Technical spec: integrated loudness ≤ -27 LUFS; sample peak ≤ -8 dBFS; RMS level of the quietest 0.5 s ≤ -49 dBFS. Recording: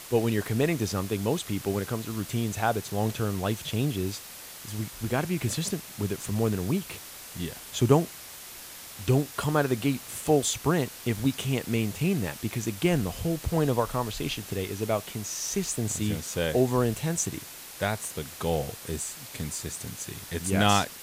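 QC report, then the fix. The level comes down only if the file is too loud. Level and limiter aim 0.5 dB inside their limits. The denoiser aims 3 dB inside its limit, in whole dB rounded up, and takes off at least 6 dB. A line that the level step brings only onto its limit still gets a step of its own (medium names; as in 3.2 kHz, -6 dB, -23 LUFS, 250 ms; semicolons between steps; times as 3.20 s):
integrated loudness -28.5 LUFS: pass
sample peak -7.5 dBFS: fail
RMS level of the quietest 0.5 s -44 dBFS: fail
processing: noise reduction 8 dB, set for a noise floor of -44 dBFS; peak limiter -8.5 dBFS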